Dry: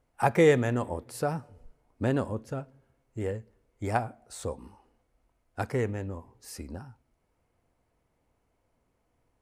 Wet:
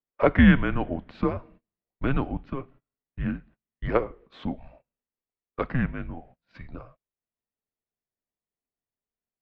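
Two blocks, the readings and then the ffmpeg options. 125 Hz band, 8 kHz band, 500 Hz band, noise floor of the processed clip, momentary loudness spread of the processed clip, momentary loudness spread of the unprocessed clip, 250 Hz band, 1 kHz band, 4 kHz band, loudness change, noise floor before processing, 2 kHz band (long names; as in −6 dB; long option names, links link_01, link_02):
+3.5 dB, below −30 dB, −1.5 dB, below −85 dBFS, 23 LU, 21 LU, +7.5 dB, −0.5 dB, +2.5 dB, +3.5 dB, −75 dBFS, +5.5 dB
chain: -af "highshelf=frequency=2200:gain=4.5,highpass=frequency=190:width_type=q:width=0.5412,highpass=frequency=190:width_type=q:width=1.307,lowpass=frequency=3500:width_type=q:width=0.5176,lowpass=frequency=3500:width_type=q:width=0.7071,lowpass=frequency=3500:width_type=q:width=1.932,afreqshift=-260,agate=range=-27dB:threshold=-55dB:ratio=16:detection=peak,volume=4.5dB"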